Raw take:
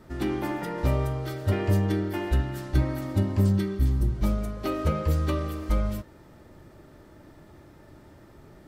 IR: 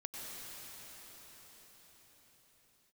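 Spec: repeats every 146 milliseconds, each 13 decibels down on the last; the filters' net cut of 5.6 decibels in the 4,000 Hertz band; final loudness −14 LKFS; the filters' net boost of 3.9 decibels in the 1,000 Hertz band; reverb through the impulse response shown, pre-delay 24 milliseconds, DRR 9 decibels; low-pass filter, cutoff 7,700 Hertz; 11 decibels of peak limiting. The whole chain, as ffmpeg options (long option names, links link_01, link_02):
-filter_complex "[0:a]lowpass=7700,equalizer=frequency=1000:width_type=o:gain=5.5,equalizer=frequency=4000:width_type=o:gain=-8,alimiter=limit=-22dB:level=0:latency=1,aecho=1:1:146|292|438:0.224|0.0493|0.0108,asplit=2[link_01][link_02];[1:a]atrim=start_sample=2205,adelay=24[link_03];[link_02][link_03]afir=irnorm=-1:irlink=0,volume=-9dB[link_04];[link_01][link_04]amix=inputs=2:normalize=0,volume=17dB"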